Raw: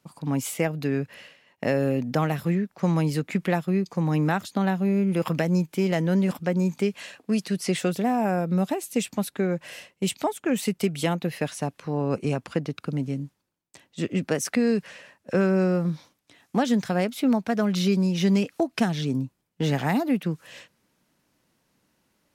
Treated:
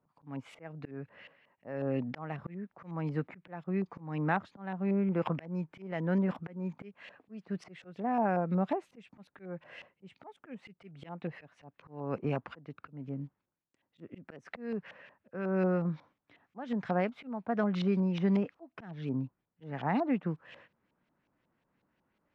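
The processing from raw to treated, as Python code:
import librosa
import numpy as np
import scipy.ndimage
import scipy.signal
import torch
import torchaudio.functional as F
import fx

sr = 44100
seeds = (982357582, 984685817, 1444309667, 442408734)

y = fx.auto_swell(x, sr, attack_ms=346.0)
y = fx.filter_lfo_lowpass(y, sr, shape='saw_up', hz=5.5, low_hz=860.0, high_hz=3000.0, q=1.3)
y = fx.dynamic_eq(y, sr, hz=930.0, q=1.2, threshold_db=-44.0, ratio=4.0, max_db=3)
y = y * 10.0 ** (-7.0 / 20.0)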